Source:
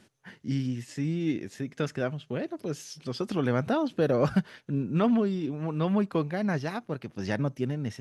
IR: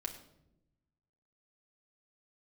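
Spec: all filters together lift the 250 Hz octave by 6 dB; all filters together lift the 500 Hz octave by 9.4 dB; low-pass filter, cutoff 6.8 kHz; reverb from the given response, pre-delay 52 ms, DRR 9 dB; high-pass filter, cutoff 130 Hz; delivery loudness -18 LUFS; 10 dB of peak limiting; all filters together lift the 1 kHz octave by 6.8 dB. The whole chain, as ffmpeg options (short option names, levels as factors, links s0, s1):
-filter_complex "[0:a]highpass=130,lowpass=6800,equalizer=f=250:t=o:g=5.5,equalizer=f=500:t=o:g=8.5,equalizer=f=1000:t=o:g=5.5,alimiter=limit=0.178:level=0:latency=1,asplit=2[s0][s1];[1:a]atrim=start_sample=2205,adelay=52[s2];[s1][s2]afir=irnorm=-1:irlink=0,volume=0.376[s3];[s0][s3]amix=inputs=2:normalize=0,volume=2.37"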